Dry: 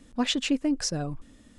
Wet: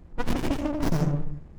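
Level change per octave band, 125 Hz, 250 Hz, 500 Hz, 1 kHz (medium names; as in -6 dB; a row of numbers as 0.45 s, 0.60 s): +9.5 dB, -1.0 dB, +3.5 dB, +3.0 dB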